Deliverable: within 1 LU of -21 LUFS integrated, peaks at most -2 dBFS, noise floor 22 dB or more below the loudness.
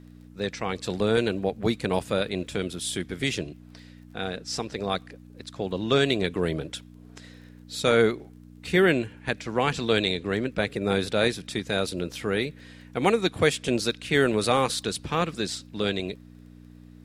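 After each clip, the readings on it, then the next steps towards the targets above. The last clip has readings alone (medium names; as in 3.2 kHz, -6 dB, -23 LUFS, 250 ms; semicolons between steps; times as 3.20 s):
tick rate 21 per s; hum 60 Hz; highest harmonic 300 Hz; hum level -47 dBFS; loudness -26.5 LUFS; peak level -6.0 dBFS; loudness target -21.0 LUFS
-> de-click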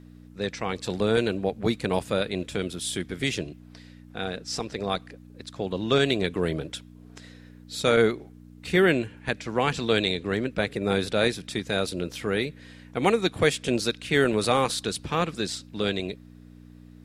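tick rate 0 per s; hum 60 Hz; highest harmonic 300 Hz; hum level -47 dBFS
-> de-hum 60 Hz, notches 5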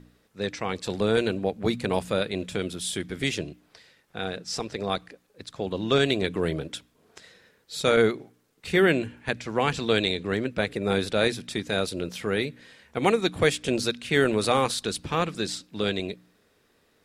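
hum not found; loudness -26.5 LUFS; peak level -6.0 dBFS; loudness target -21.0 LUFS
-> trim +5.5 dB; peak limiter -2 dBFS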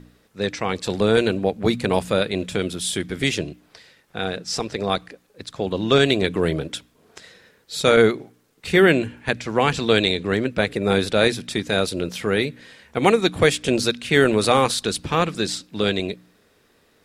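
loudness -21.0 LUFS; peak level -2.0 dBFS; noise floor -60 dBFS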